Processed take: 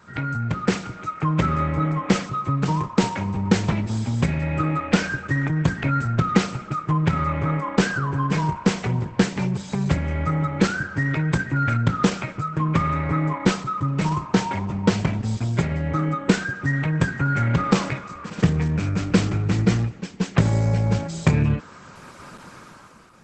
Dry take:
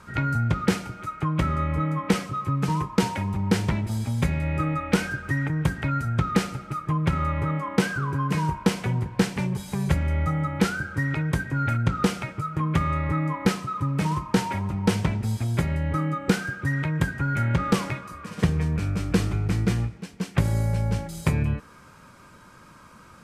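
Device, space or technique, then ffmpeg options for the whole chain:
video call: -af "highpass=100,dynaudnorm=f=150:g=9:m=11dB,volume=-1dB" -ar 48000 -c:a libopus -b:a 12k

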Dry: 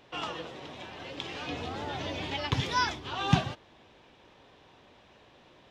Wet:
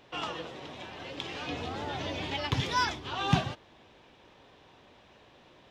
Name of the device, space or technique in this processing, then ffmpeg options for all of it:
parallel distortion: -filter_complex "[0:a]asplit=2[a][b];[b]asoftclip=type=hard:threshold=-24dB,volume=-7dB[c];[a][c]amix=inputs=2:normalize=0,volume=-3dB"

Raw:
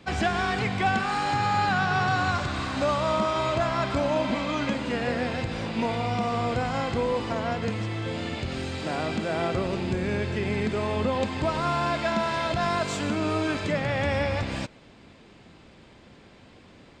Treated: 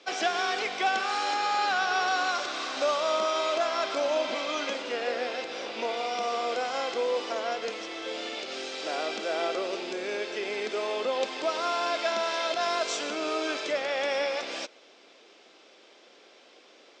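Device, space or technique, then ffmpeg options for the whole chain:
phone speaker on a table: -filter_complex "[0:a]asettb=1/sr,asplit=3[a][b][c];[a]atrim=end=4.824[d];[b]atrim=start=4.82:end=5.97,asetpts=PTS-STARTPTS,afade=t=in:d=0.004:c=qsin,afade=t=out:st=1.146:d=0.004:c=qsin,highshelf=f=5.4k:g=-5[e];[c]atrim=start=5.966[f];[d][e]acrossfade=d=0.004:c1=hsin:c2=qsin[g];[g][f]acrossfade=d=0.004:c1=qsin:c2=hsin,highpass=f=380:w=0.5412,highpass=f=380:w=1.3066,equalizer=f=950:t=q:w=4:g=-6,equalizer=f=1.8k:t=q:w=4:g=-4,equalizer=f=3.4k:t=q:w=4:g=3,equalizer=f=5.7k:t=q:w=4:g=9,lowpass=f=7.6k:w=0.5412,lowpass=f=7.6k:w=1.3066"

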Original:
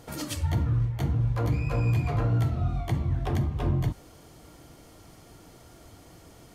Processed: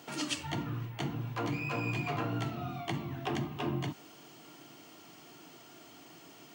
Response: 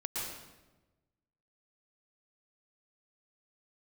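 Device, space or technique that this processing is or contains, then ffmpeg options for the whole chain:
old television with a line whistle: -af "highpass=f=170:w=0.5412,highpass=f=170:w=1.3066,equalizer=f=200:t=q:w=4:g=-6,equalizer=f=520:t=q:w=4:g=-10,equalizer=f=2.8k:t=q:w=4:g=8,lowpass=f=8.3k:w=0.5412,lowpass=f=8.3k:w=1.3066,aeval=exprs='val(0)+0.001*sin(2*PI*15625*n/s)':c=same"

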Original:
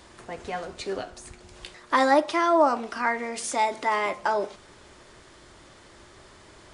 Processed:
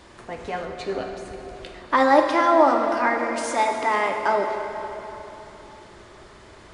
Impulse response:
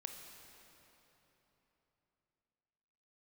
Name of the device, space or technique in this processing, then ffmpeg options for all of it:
swimming-pool hall: -filter_complex "[1:a]atrim=start_sample=2205[a];[0:a][a]afir=irnorm=-1:irlink=0,highshelf=f=4.7k:g=-7,asettb=1/sr,asplit=3[b][c][d];[b]atrim=end=0.624[e];[c]atrim=start=0.62:end=2.11,asetpts=PTS-STARTPTS,afade=t=in:d=0.004:c=qsin,afade=t=out:st=1.486:d=0.004:c=qsin,highshelf=f=4.7k:g=-5.5[f];[d]atrim=start=2.106[g];[e][f]acrossfade=d=0.004:c1=hsin:c2=qsin[h];[h][g]acrossfade=d=0.004:c1=qsin:c2=hsin,volume=7.5dB"

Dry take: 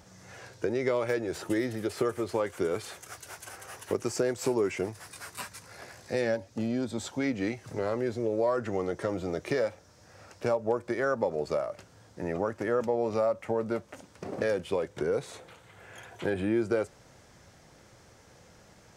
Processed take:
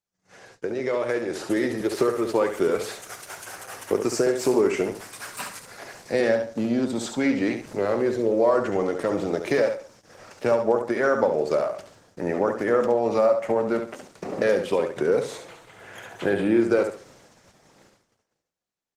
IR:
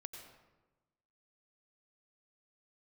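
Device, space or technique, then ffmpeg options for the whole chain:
video call: -filter_complex "[0:a]asettb=1/sr,asplit=3[a][b][c];[a]atrim=end=14.534[d];[b]atrim=start=14.53:end=15.24,asetpts=PTS-STARTPTS,afade=t=in:d=0.004:c=qsin,afade=t=out:st=0.706:d=0.004:c=qsin,agate=range=-18dB:threshold=-48dB:ratio=16:detection=peak[e];[c]atrim=start=15.236[f];[d][e]acrossfade=d=0.004:c1=hsin:c2=qsin[g];[g][f]acrossfade=d=0.004:c1=qsin:c2=hsin,highpass=160,aecho=1:1:69|138|207|276:0.447|0.147|0.0486|0.0161,dynaudnorm=f=120:g=21:m=7dB,agate=range=-38dB:threshold=-49dB:ratio=16:detection=peak" -ar 48000 -c:a libopus -b:a 16k

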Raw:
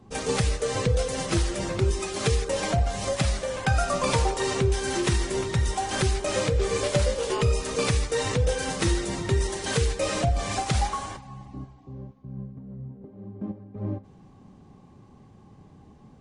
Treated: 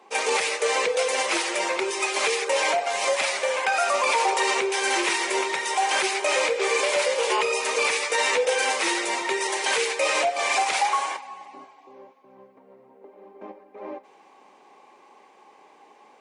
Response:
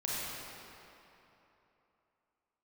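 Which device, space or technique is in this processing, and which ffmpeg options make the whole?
laptop speaker: -filter_complex "[0:a]asettb=1/sr,asplit=3[a][b][c];[a]atrim=end=8.014[d];[b]atrim=start=8.01:end=8.45,asetpts=PTS-STARTPTS,afade=t=in:d=0.004:c=qsin,afade=t=out:st=0.436:d=0.004:c=qsin,asplit=2[e][f];[f]adelay=12,volume=-4dB[g];[e][g]amix=inputs=2:normalize=0,atrim=end_sample=19404[h];[c]atrim=start=8.446[i];[d][h]acrossfade=d=0.004:c1=hsin:c2=qsin[j];[j][i]acrossfade=d=0.004:c1=qsin:c2=hsin,highpass=f=420:w=0.5412,highpass=f=420:w=1.3066,equalizer=f=920:t=o:w=0.32:g=7.5,equalizer=f=2.3k:t=o:w=0.59:g=10,alimiter=limit=-18.5dB:level=0:latency=1:release=26,volume=5dB"

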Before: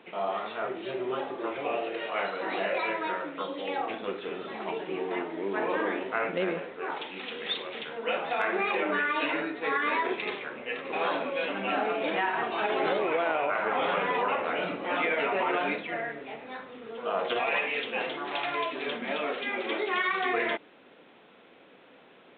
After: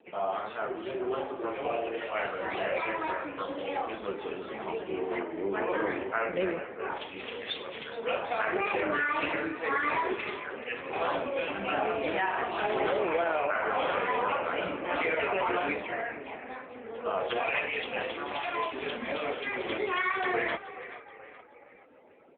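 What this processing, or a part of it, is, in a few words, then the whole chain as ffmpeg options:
mobile call with aggressive noise cancelling: -filter_complex "[0:a]asettb=1/sr,asplit=3[a][b][c];[a]atrim=end=3.824[d];[b]atrim=start=3.82:end=4.89,asetpts=PTS-STARTPTS,afade=t=in:d=0.004:c=qsin,afade=t=out:st=1.066:d=0.004:c=qsin,equalizer=f=720:t=o:w=0.27:g=-2[e];[c]atrim=start=4.886[f];[d][e]acrossfade=d=0.004:c1=hsin:c2=qsin[g];[g][f]acrossfade=d=0.004:c1=qsin:c2=hsin,asplit=6[h][i][j][k][l][m];[i]adelay=427,afreqshift=38,volume=-14dB[n];[j]adelay=854,afreqshift=76,volume=-20.4dB[o];[k]adelay=1281,afreqshift=114,volume=-26.8dB[p];[l]adelay=1708,afreqshift=152,volume=-33.1dB[q];[m]adelay=2135,afreqshift=190,volume=-39.5dB[r];[h][n][o][p][q][r]amix=inputs=6:normalize=0,highpass=140,afftdn=nr=22:nf=-52" -ar 8000 -c:a libopencore_amrnb -b:a 7950

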